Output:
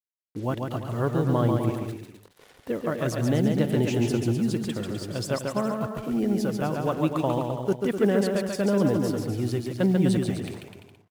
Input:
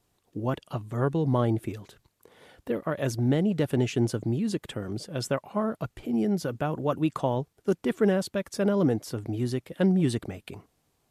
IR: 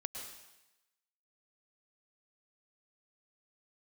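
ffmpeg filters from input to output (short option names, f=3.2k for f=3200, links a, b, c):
-af "acrusher=bits=7:mix=0:aa=0.5,aecho=1:1:140|252|341.6|413.3|470.6:0.631|0.398|0.251|0.158|0.1"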